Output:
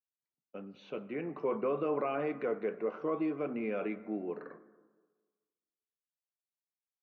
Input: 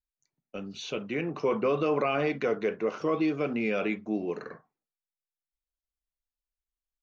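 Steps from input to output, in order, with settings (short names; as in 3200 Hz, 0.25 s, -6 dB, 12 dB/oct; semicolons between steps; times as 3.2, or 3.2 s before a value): HPF 180 Hz 12 dB/oct; gate -46 dBFS, range -7 dB; LPF 1700 Hz 12 dB/oct; plate-style reverb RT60 1.4 s, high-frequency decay 0.25×, pre-delay 80 ms, DRR 16 dB; gain -5.5 dB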